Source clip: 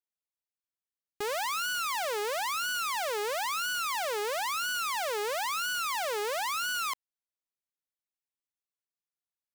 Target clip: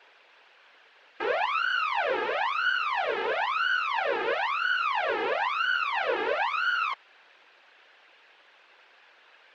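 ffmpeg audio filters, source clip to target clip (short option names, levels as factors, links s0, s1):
-af "aeval=exprs='val(0)+0.5*0.00708*sgn(val(0))':c=same,highpass=f=410:w=0.5412,highpass=f=410:w=1.3066,equalizer=f=510:t=q:w=4:g=5,equalizer=f=880:t=q:w=4:g=4,equalizer=f=1600:t=q:w=4:g=8,equalizer=f=2600:t=q:w=4:g=5,lowpass=f=3500:w=0.5412,lowpass=f=3500:w=1.3066,afftfilt=real='hypot(re,im)*cos(2*PI*random(0))':imag='hypot(re,im)*sin(2*PI*random(1))':win_size=512:overlap=0.75,volume=2.11"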